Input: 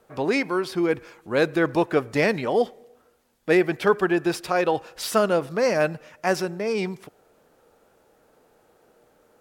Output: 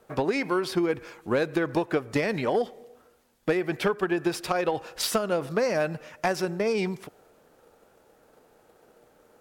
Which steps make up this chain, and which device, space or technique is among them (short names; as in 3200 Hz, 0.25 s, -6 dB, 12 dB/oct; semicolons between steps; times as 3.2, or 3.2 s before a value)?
drum-bus smash (transient shaper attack +7 dB, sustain +2 dB; compressor 12:1, threshold -20 dBFS, peak gain reduction 12 dB; soft clip -13.5 dBFS, distortion -21 dB)